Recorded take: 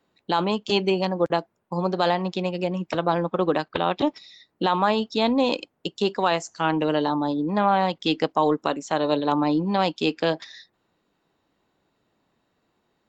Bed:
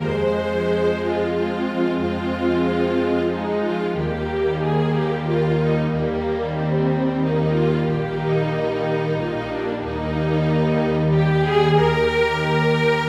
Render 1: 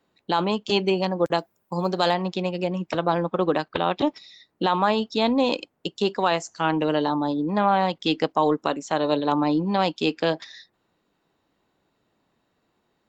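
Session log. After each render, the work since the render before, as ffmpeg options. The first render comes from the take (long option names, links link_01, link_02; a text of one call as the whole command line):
ffmpeg -i in.wav -filter_complex "[0:a]asettb=1/sr,asplit=3[link_01][link_02][link_03];[link_01]atrim=end=1.254[link_04];[link_02]atrim=start=1.25:end=2.14,asetpts=PTS-STARTPTS,afade=type=in:duration=0.004:curve=qsin,afade=type=out:start_time=0.886:duration=0.004:curve=qsin,aemphasis=mode=production:type=50fm[link_05];[link_03]atrim=start=2.136[link_06];[link_04][link_05]acrossfade=duration=0.004:curve1=hsin:curve2=qsin[link_07];[link_07][link_06]acrossfade=duration=0.004:curve1=qsin:curve2=hsin" out.wav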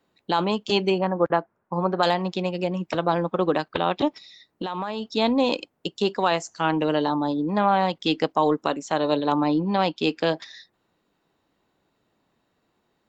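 ffmpeg -i in.wav -filter_complex "[0:a]asettb=1/sr,asplit=3[link_01][link_02][link_03];[link_01]atrim=end=0.984[link_04];[link_02]atrim=start=0.98:end=2.03,asetpts=PTS-STARTPTS,afade=type=in:duration=0.004:curve=qsin,afade=type=out:start_time=1.046:duration=0.004:curve=qsin,lowpass=frequency=1500:width_type=q:width=1.6[link_05];[link_03]atrim=start=2.026[link_06];[link_04][link_05]acrossfade=duration=0.004:curve1=hsin:curve2=qsin[link_07];[link_07][link_06]acrossfade=duration=0.004:curve1=qsin:curve2=hsin,asplit=3[link_08][link_09][link_10];[link_08]afade=type=out:start_time=4.07:duration=0.02[link_11];[link_09]acompressor=threshold=-25dB:ratio=6:attack=3.2:release=140:knee=1:detection=peak,afade=type=in:start_time=4.07:duration=0.02,afade=type=out:start_time=5.15:duration=0.02[link_12];[link_10]afade=type=in:start_time=5.15:duration=0.02[link_13];[link_11][link_12][link_13]amix=inputs=3:normalize=0,asettb=1/sr,asplit=3[link_14][link_15][link_16];[link_14]atrim=end=9.474[link_17];[link_15]atrim=start=9.47:end=10.04,asetpts=PTS-STARTPTS,afade=type=in:duration=0.004:curve=qsin,afade=type=out:start_time=0.566:duration=0.004:curve=qsin,lowpass=5300[link_18];[link_16]atrim=start=10.036[link_19];[link_17][link_18]acrossfade=duration=0.004:curve1=hsin:curve2=qsin[link_20];[link_20][link_19]acrossfade=duration=0.004:curve1=qsin:curve2=hsin" out.wav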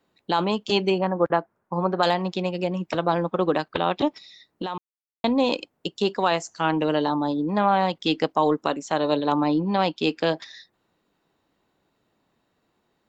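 ffmpeg -i in.wav -filter_complex "[0:a]asplit=3[link_01][link_02][link_03];[link_01]atrim=end=4.78,asetpts=PTS-STARTPTS,afade=type=out:start_time=4.776:duration=0.004:curve=hsin[link_04];[link_02]atrim=start=4.78:end=5.24,asetpts=PTS-STARTPTS,volume=0[link_05];[link_03]atrim=start=5.24,asetpts=PTS-STARTPTS,afade=type=in:duration=0.004:curve=hsin[link_06];[link_04][link_05][link_06]concat=n=3:v=0:a=1" out.wav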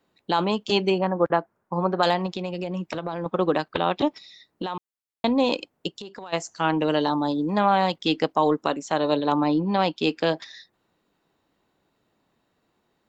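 ffmpeg -i in.wav -filter_complex "[0:a]asettb=1/sr,asplit=3[link_01][link_02][link_03];[link_01]atrim=end=2.264[link_04];[link_02]atrim=start=2.26:end=3.26,asetpts=PTS-STARTPTS,afade=type=in:duration=0.004:curve=qsin,afade=type=out:start_time=0.996:duration=0.004:curve=qsin,acompressor=threshold=-25dB:ratio=6:attack=3.2:release=140:knee=1:detection=peak[link_05];[link_03]atrim=start=3.256[link_06];[link_04][link_05]acrossfade=duration=0.004:curve1=hsin:curve2=qsin[link_07];[link_07][link_06]acrossfade=duration=0.004:curve1=qsin:curve2=hsin,asplit=3[link_08][link_09][link_10];[link_08]afade=type=out:start_time=5.91:duration=0.02[link_11];[link_09]acompressor=threshold=-35dB:ratio=8:attack=3.2:release=140:knee=1:detection=peak,afade=type=in:start_time=5.91:duration=0.02,afade=type=out:start_time=6.32:duration=0.02[link_12];[link_10]afade=type=in:start_time=6.32:duration=0.02[link_13];[link_11][link_12][link_13]amix=inputs=3:normalize=0,asettb=1/sr,asplit=3[link_14][link_15][link_16];[link_14]atrim=end=6.884[link_17];[link_15]atrim=start=6.88:end=7.96,asetpts=PTS-STARTPTS,afade=type=in:duration=0.004:curve=qsin,afade=type=out:start_time=1.076:duration=0.004:curve=qsin,highshelf=frequency=4400:gain=8[link_18];[link_16]atrim=start=7.956[link_19];[link_17][link_18]acrossfade=duration=0.004:curve1=hsin:curve2=qsin[link_20];[link_20][link_19]acrossfade=duration=0.004:curve1=qsin:curve2=hsin" out.wav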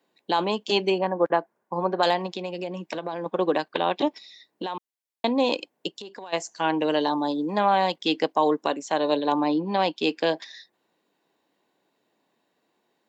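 ffmpeg -i in.wav -af "highpass=250,bandreject=frequency=1300:width=5.9" out.wav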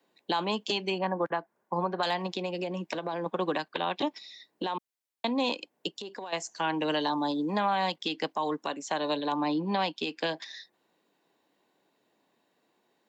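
ffmpeg -i in.wav -filter_complex "[0:a]acrossover=split=260|790|1500[link_01][link_02][link_03][link_04];[link_02]acompressor=threshold=-33dB:ratio=6[link_05];[link_01][link_05][link_03][link_04]amix=inputs=4:normalize=0,alimiter=limit=-18.5dB:level=0:latency=1:release=239" out.wav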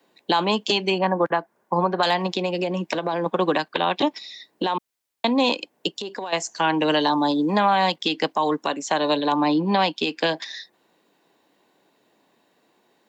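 ffmpeg -i in.wav -af "volume=8.5dB" out.wav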